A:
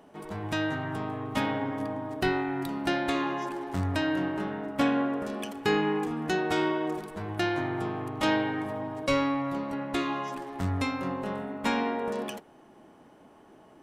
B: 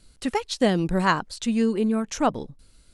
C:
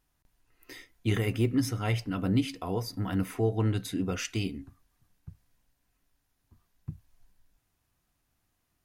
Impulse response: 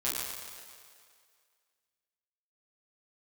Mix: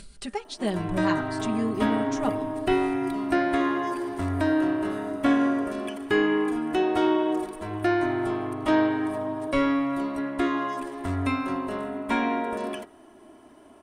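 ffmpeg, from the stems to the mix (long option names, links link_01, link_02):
-filter_complex "[0:a]acrossover=split=3100[link_01][link_02];[link_02]acompressor=threshold=-52dB:ratio=4:attack=1:release=60[link_03];[link_01][link_03]amix=inputs=2:normalize=0,aecho=1:1:3:0.73,adelay=450,volume=1.5dB[link_04];[1:a]lowpass=6900,aecho=1:1:5:0.84,acompressor=mode=upward:threshold=-23dB:ratio=2.5,volume=-10dB,asplit=2[link_05][link_06];[2:a]acompressor=threshold=-28dB:ratio=6,adelay=1050,volume=-11dB,asplit=2[link_07][link_08];[link_08]volume=-12dB[link_09];[link_06]apad=whole_len=436471[link_10];[link_07][link_10]sidechaingate=range=-33dB:threshold=-35dB:ratio=16:detection=peak[link_11];[3:a]atrim=start_sample=2205[link_12];[link_09][link_12]afir=irnorm=-1:irlink=0[link_13];[link_04][link_05][link_11][link_13]amix=inputs=4:normalize=0,equalizer=frequency=9000:width=6:gain=13,bandreject=frequency=96.4:width_type=h:width=4,bandreject=frequency=192.8:width_type=h:width=4,bandreject=frequency=289.2:width_type=h:width=4,bandreject=frequency=385.6:width_type=h:width=4,bandreject=frequency=482:width_type=h:width=4,bandreject=frequency=578.4:width_type=h:width=4,bandreject=frequency=674.8:width_type=h:width=4,bandreject=frequency=771.2:width_type=h:width=4,bandreject=frequency=867.6:width_type=h:width=4,bandreject=frequency=964:width_type=h:width=4,bandreject=frequency=1060.4:width_type=h:width=4,bandreject=frequency=1156.8:width_type=h:width=4,bandreject=frequency=1253.2:width_type=h:width=4,bandreject=frequency=1349.6:width_type=h:width=4,bandreject=frequency=1446:width_type=h:width=4,bandreject=frequency=1542.4:width_type=h:width=4,bandreject=frequency=1638.8:width_type=h:width=4,bandreject=frequency=1735.2:width_type=h:width=4,bandreject=frequency=1831.6:width_type=h:width=4,bandreject=frequency=1928:width_type=h:width=4"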